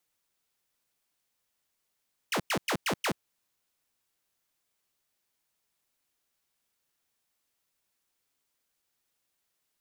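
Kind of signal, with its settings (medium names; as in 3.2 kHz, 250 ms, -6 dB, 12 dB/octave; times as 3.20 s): burst of laser zaps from 3.3 kHz, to 120 Hz, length 0.08 s saw, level -23.5 dB, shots 5, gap 0.10 s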